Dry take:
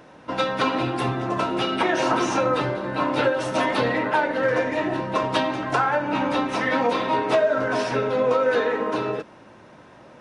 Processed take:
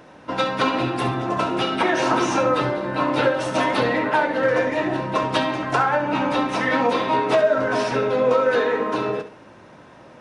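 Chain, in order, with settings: flutter echo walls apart 11.6 m, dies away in 0.35 s; gain +1.5 dB

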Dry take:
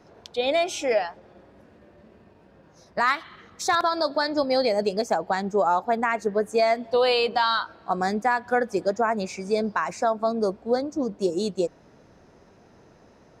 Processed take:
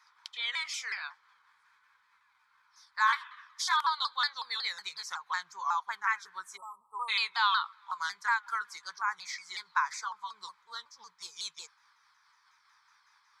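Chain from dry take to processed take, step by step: repeated pitch sweeps -3.5 st, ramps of 0.184 s; elliptic high-pass 1000 Hz, stop band 40 dB; notch 2800 Hz, Q 5.4; spectral delete 6.56–7.09, 1300–7600 Hz

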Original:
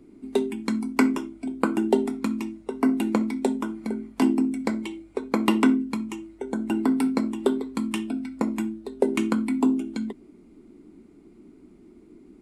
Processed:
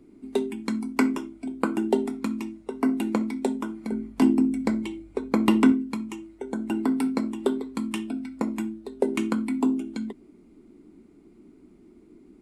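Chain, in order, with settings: 3.92–5.72 low shelf 200 Hz +9.5 dB; gain -2 dB

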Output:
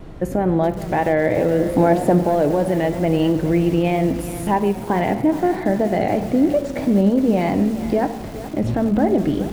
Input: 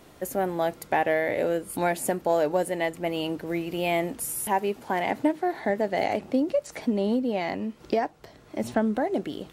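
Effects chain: RIAA curve playback; limiter -17 dBFS, peak gain reduction 10.5 dB; shoebox room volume 1300 m³, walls mixed, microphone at 0.58 m; vibrato 3.1 Hz 50 cents; 1.59–2.23 EQ curve 100 Hz 0 dB, 770 Hz +8 dB, 2100 Hz -2 dB; lo-fi delay 0.42 s, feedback 55%, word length 6-bit, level -13 dB; gain +7 dB

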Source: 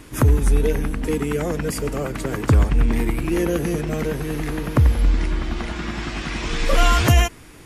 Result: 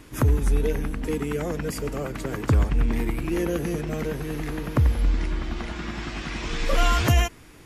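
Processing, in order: bell 9200 Hz -4.5 dB 0.31 oct; gain -4.5 dB

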